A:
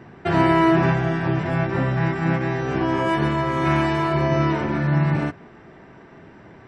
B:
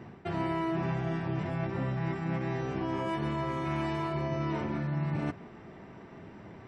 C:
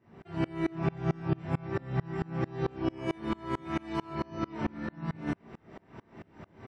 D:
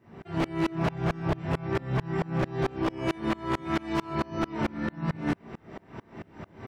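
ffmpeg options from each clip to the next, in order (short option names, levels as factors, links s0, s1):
-af "equalizer=f=100:t=o:w=0.33:g=4,equalizer=f=200:t=o:w=0.33:g=4,equalizer=f=1600:t=o:w=0.33:g=-5,areverse,acompressor=threshold=0.0447:ratio=4,areverse,volume=0.668"
-af "aecho=1:1:18|31:0.501|0.596,aeval=exprs='val(0)*pow(10,-30*if(lt(mod(-4.5*n/s,1),2*abs(-4.5)/1000),1-mod(-4.5*n/s,1)/(2*abs(-4.5)/1000),(mod(-4.5*n/s,1)-2*abs(-4.5)/1000)/(1-2*abs(-4.5)/1000))/20)':c=same,volume=1.68"
-af "aeval=exprs='0.0531*(abs(mod(val(0)/0.0531+3,4)-2)-1)':c=same,volume=2"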